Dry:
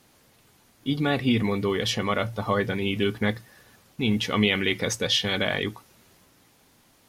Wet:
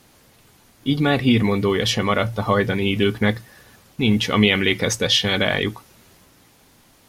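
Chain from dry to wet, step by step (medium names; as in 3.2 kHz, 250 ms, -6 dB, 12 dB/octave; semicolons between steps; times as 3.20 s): bass shelf 62 Hz +5.5 dB; trim +5.5 dB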